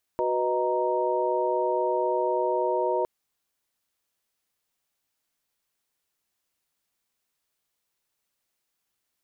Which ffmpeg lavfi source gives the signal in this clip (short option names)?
-f lavfi -i "aevalsrc='0.0398*(sin(2*PI*369.99*t)+sin(2*PI*493.88*t)+sin(2*PI*622.25*t)+sin(2*PI*932.33*t))':d=2.86:s=44100"